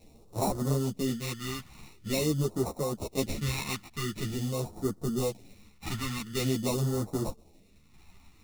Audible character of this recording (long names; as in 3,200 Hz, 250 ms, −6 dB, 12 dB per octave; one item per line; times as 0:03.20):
aliases and images of a low sample rate 1,600 Hz, jitter 0%
phaser sweep stages 2, 0.46 Hz, lowest notch 490–2,400 Hz
tremolo saw down 0.63 Hz, depth 45%
a shimmering, thickened sound